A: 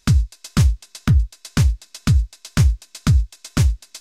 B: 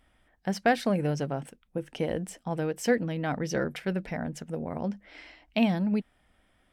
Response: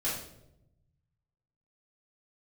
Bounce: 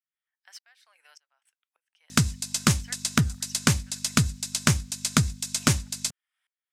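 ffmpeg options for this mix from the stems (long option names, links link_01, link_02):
-filter_complex "[0:a]equalizer=frequency=8100:width_type=o:width=1.1:gain=6,aeval=exprs='val(0)+0.0126*(sin(2*PI*50*n/s)+sin(2*PI*2*50*n/s)/2+sin(2*PI*3*50*n/s)/3+sin(2*PI*4*50*n/s)/4+sin(2*PI*5*50*n/s)/5)':channel_layout=same,adelay=2100,volume=2.5dB[link_01];[1:a]highpass=frequency=1100:width=0.5412,highpass=frequency=1100:width=1.3066,highshelf=frequency=4900:gain=-4,aeval=exprs='val(0)*pow(10,-28*if(lt(mod(-1.7*n/s,1),2*abs(-1.7)/1000),1-mod(-1.7*n/s,1)/(2*abs(-1.7)/1000),(mod(-1.7*n/s,1)-2*abs(-1.7)/1000)/(1-2*abs(-1.7)/1000))/20)':channel_layout=same,volume=-10dB[link_02];[link_01][link_02]amix=inputs=2:normalize=0,highpass=160,highshelf=frequency=2500:gain=10,acrossover=split=2500|5700[link_03][link_04][link_05];[link_03]acompressor=threshold=-18dB:ratio=4[link_06];[link_04]acompressor=threshold=-33dB:ratio=4[link_07];[link_05]acompressor=threshold=-30dB:ratio=4[link_08];[link_06][link_07][link_08]amix=inputs=3:normalize=0"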